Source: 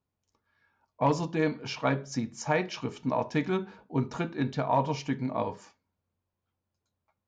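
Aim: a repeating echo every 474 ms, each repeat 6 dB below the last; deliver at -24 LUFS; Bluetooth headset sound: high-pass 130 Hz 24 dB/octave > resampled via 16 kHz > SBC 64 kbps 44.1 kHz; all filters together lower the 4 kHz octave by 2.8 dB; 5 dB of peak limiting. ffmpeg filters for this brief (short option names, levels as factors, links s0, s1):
-af "equalizer=f=4000:t=o:g=-4,alimiter=limit=0.112:level=0:latency=1,highpass=f=130:w=0.5412,highpass=f=130:w=1.3066,aecho=1:1:474|948|1422|1896|2370|2844:0.501|0.251|0.125|0.0626|0.0313|0.0157,aresample=16000,aresample=44100,volume=2.51" -ar 44100 -c:a sbc -b:a 64k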